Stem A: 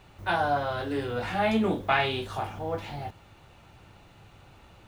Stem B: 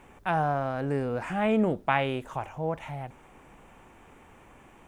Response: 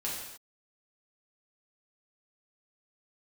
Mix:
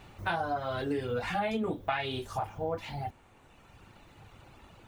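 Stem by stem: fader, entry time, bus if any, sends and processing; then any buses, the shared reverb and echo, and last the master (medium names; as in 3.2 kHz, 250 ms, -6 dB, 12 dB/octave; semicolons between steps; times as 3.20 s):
+1.5 dB, 0.00 s, no send, reverb removal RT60 2 s
-8.0 dB, 0.00 s, no send, none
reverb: none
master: compression 6:1, threshold -28 dBFS, peak gain reduction 11 dB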